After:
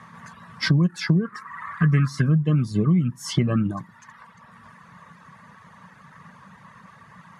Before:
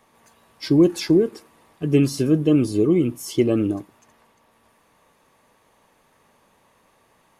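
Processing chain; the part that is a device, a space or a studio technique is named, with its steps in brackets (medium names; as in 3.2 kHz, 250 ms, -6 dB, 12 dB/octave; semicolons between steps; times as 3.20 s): high-order bell 1.4 kHz +11 dB 1.2 oct; reverb removal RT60 0.82 s; high-pass 99 Hz; jukebox (low-pass 7.1 kHz 12 dB/octave; resonant low shelf 240 Hz +10.5 dB, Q 3; compression 4:1, threshold -27 dBFS, peak gain reduction 18 dB); 1.25–2.22 s: high-order bell 1.5 kHz +13 dB 1.3 oct; trim +7 dB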